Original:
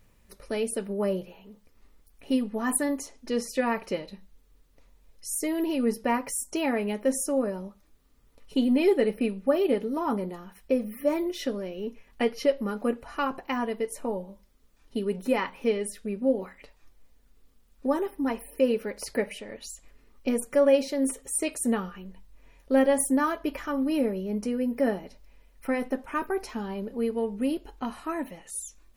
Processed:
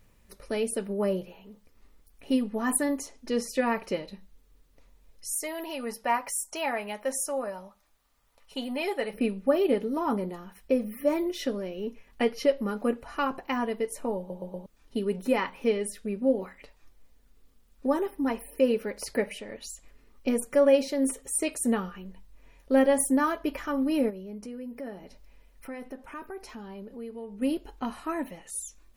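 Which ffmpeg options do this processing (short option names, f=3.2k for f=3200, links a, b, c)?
-filter_complex "[0:a]asplit=3[a][b][c];[a]afade=t=out:st=5.31:d=0.02[d];[b]lowshelf=f=520:t=q:w=1.5:g=-10,afade=t=in:st=5.31:d=0.02,afade=t=out:st=9.12:d=0.02[e];[c]afade=t=in:st=9.12:d=0.02[f];[d][e][f]amix=inputs=3:normalize=0,asplit=3[g][h][i];[g]afade=t=out:st=24.09:d=0.02[j];[h]acompressor=threshold=-45dB:ratio=2:attack=3.2:release=140:knee=1:detection=peak,afade=t=in:st=24.09:d=0.02,afade=t=out:st=27.41:d=0.02[k];[i]afade=t=in:st=27.41:d=0.02[l];[j][k][l]amix=inputs=3:normalize=0,asplit=5[m][n][o][p][q];[m]atrim=end=14.302[r];[n]atrim=start=14.178:end=14.302[s];[o]atrim=start=14.178:end=14.302[t];[p]atrim=start=14.178:end=14.302[u];[q]atrim=start=14.658[v];[r][s]acrossfade=d=0.004:c1=hsin:c2=hsin[w];[w][t]acrossfade=d=0.004:c1=hsin:c2=hsin[x];[x][u]acrossfade=d=0.004:c1=hsin:c2=hsin[y];[y][v]acrossfade=d=0.004:c1=hsin:c2=hsin"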